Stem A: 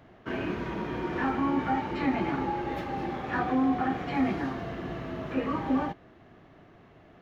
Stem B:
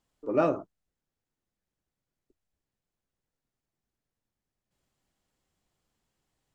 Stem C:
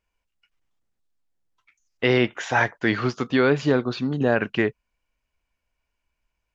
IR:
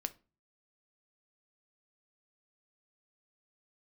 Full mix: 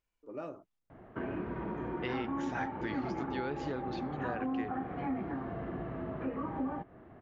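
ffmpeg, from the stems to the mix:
-filter_complex "[0:a]lowpass=1500,adelay=900,volume=1dB[link_01];[1:a]volume=-15.5dB[link_02];[2:a]volume=-9.5dB[link_03];[link_01][link_02][link_03]amix=inputs=3:normalize=0,acompressor=threshold=-37dB:ratio=2.5"

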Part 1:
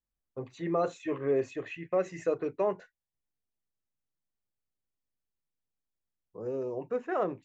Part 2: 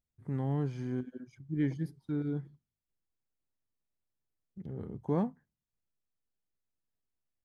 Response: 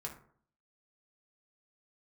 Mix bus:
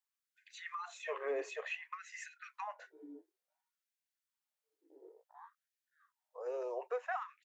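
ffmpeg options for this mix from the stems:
-filter_complex "[0:a]highpass=frequency=570:width=0.5412,highpass=frequency=570:width=1.3066,acompressor=threshold=-36dB:ratio=6,volume=2dB,asplit=2[link_01][link_02];[1:a]afwtdn=0.00794,flanger=delay=17:depth=4.7:speed=2.2,adelay=250,volume=-8dB,asplit=2[link_03][link_04];[link_04]volume=-6.5dB[link_05];[link_02]apad=whole_len=339302[link_06];[link_03][link_06]sidechaincompress=threshold=-56dB:ratio=8:attack=16:release=579[link_07];[link_05]aecho=0:1:571|1142|1713|2284|2855:1|0.32|0.102|0.0328|0.0105[link_08];[link_01][link_07][link_08]amix=inputs=3:normalize=0,lowshelf=frequency=170:gain=10.5,afftfilt=real='re*gte(b*sr/1024,290*pow(1500/290,0.5+0.5*sin(2*PI*0.56*pts/sr)))':imag='im*gte(b*sr/1024,290*pow(1500/290,0.5+0.5*sin(2*PI*0.56*pts/sr)))':win_size=1024:overlap=0.75"

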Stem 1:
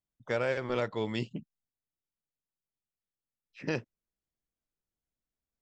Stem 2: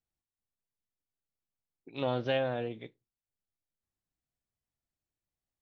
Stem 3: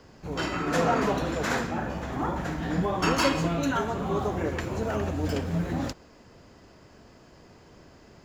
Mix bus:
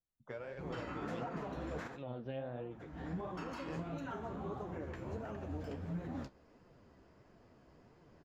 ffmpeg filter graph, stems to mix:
ffmpeg -i stem1.wav -i stem2.wav -i stem3.wav -filter_complex "[0:a]acompressor=threshold=-33dB:ratio=6,volume=-4.5dB[link_01];[1:a]lowshelf=frequency=450:gain=7,volume=-6.5dB,asplit=2[link_02][link_03];[2:a]adelay=350,volume=-6dB[link_04];[link_03]apad=whole_len=378849[link_05];[link_04][link_05]sidechaincompress=threshold=-52dB:ratio=10:attack=6.9:release=215[link_06];[link_02][link_06]amix=inputs=2:normalize=0,alimiter=level_in=4.5dB:limit=-24dB:level=0:latency=1:release=274,volume=-4.5dB,volume=0dB[link_07];[link_01][link_07]amix=inputs=2:normalize=0,highshelf=frequency=3300:gain=-12,flanger=delay=5.6:depth=9.9:regen=42:speed=1.5:shape=sinusoidal" out.wav

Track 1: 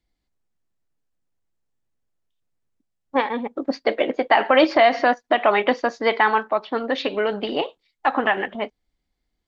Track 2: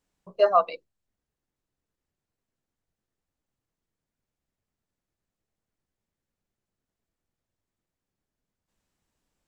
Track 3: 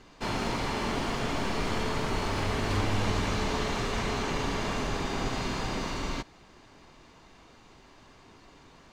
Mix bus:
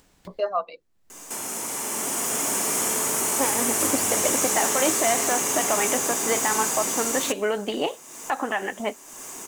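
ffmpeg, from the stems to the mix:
ffmpeg -i stem1.wav -i stem2.wav -i stem3.wav -filter_complex "[0:a]alimiter=limit=-13.5dB:level=0:latency=1:release=358,adelay=250,volume=-0.5dB[link_01];[1:a]agate=range=-19dB:threshold=-49dB:ratio=16:detection=peak,volume=-6dB,asplit=2[link_02][link_03];[2:a]highpass=260,aexciter=amount=11.2:drive=9.3:freq=6600,adelay=1100,volume=2.5dB[link_04];[link_03]apad=whole_len=442024[link_05];[link_04][link_05]sidechaincompress=threshold=-38dB:ratio=6:attack=20:release=1460[link_06];[link_01][link_02][link_06]amix=inputs=3:normalize=0,acompressor=mode=upward:threshold=-27dB:ratio=2.5" out.wav

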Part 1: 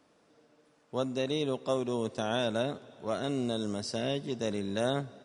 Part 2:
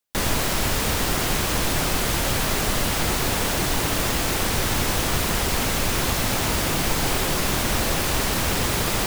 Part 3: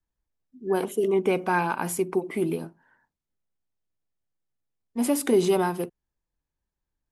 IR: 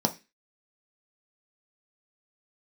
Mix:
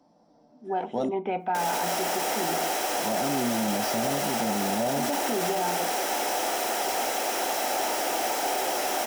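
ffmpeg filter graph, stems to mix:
-filter_complex "[0:a]volume=-1dB,asplit=3[link_01][link_02][link_03];[link_01]atrim=end=1.09,asetpts=PTS-STARTPTS,afade=type=out:start_time=1.086:duration=0.004:curve=hsin[link_04];[link_02]atrim=start=1.09:end=2.93,asetpts=PTS-STARTPTS,volume=0[link_05];[link_03]atrim=start=2.93,asetpts=PTS-STARTPTS,afade=type=in:duration=0.004:curve=hsin[link_06];[link_04][link_05][link_06]concat=n=3:v=0:a=1,asplit=2[link_07][link_08];[link_08]volume=-11.5dB[link_09];[1:a]highpass=frequency=360:width=0.5412,highpass=frequency=360:width=1.3066,bandreject=frequency=3600:width=13,adelay=1400,volume=0dB,asplit=2[link_10][link_11];[link_11]volume=-23dB[link_12];[2:a]lowpass=frequency=3200:width=0.5412,lowpass=frequency=3200:width=1.3066,equalizer=frequency=210:width=0.33:gain=-13.5,volume=-5.5dB,asplit=3[link_13][link_14][link_15];[link_14]volume=-9dB[link_16];[link_15]apad=whole_len=231264[link_17];[link_07][link_17]sidechaingate=range=-33dB:threshold=-57dB:ratio=16:detection=peak[link_18];[link_18][link_10]amix=inputs=2:normalize=0,asoftclip=type=hard:threshold=-24dB,alimiter=level_in=4.5dB:limit=-24dB:level=0:latency=1,volume=-4.5dB,volume=0dB[link_19];[3:a]atrim=start_sample=2205[link_20];[link_09][link_12][link_16]amix=inputs=3:normalize=0[link_21];[link_21][link_20]afir=irnorm=-1:irlink=0[link_22];[link_13][link_19][link_22]amix=inputs=3:normalize=0,equalizer=frequency=740:width_type=o:width=0.43:gain=9,alimiter=limit=-18.5dB:level=0:latency=1:release=15"

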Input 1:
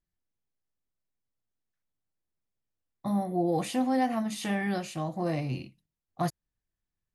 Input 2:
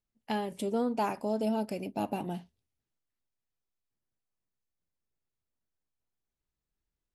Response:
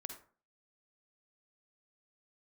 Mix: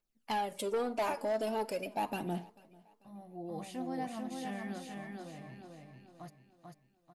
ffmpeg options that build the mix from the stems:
-filter_complex "[0:a]volume=-12.5dB,afade=type=in:start_time=2.85:duration=0.71:silence=0.398107,afade=type=out:start_time=4.72:duration=0.27:silence=0.421697,asplit=2[link_01][link_02];[link_02]volume=-3.5dB[link_03];[1:a]equalizer=frequency=71:width=0.45:gain=-15,aphaser=in_gain=1:out_gain=1:delay=3.6:decay=0.57:speed=0.42:type=triangular,asoftclip=type=tanh:threshold=-28.5dB,volume=-0.5dB,asplit=4[link_04][link_05][link_06][link_07];[link_05]volume=-7.5dB[link_08];[link_06]volume=-22dB[link_09];[link_07]apad=whole_len=314935[link_10];[link_01][link_10]sidechaincompress=threshold=-51dB:ratio=8:attack=16:release=1160[link_11];[2:a]atrim=start_sample=2205[link_12];[link_08][link_12]afir=irnorm=-1:irlink=0[link_13];[link_03][link_09]amix=inputs=2:normalize=0,aecho=0:1:442|884|1326|1768|2210|2652:1|0.4|0.16|0.064|0.0256|0.0102[link_14];[link_11][link_04][link_13][link_14]amix=inputs=4:normalize=0"

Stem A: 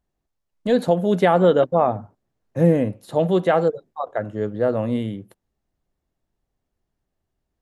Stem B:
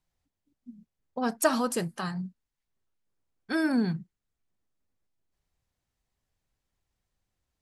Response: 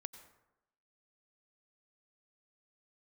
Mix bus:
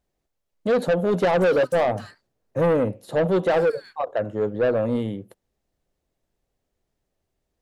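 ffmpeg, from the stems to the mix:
-filter_complex "[0:a]equalizer=frequency=510:width_type=o:width=0.9:gain=6.5,volume=-1dB[link_01];[1:a]highpass=frequency=1400:width=0.5412,highpass=frequency=1400:width=1.3066,alimiter=limit=-24dB:level=0:latency=1:release=183,asoftclip=type=tanh:threshold=-38dB,volume=-1dB[link_02];[link_01][link_02]amix=inputs=2:normalize=0,asoftclip=type=tanh:threshold=-15.5dB"

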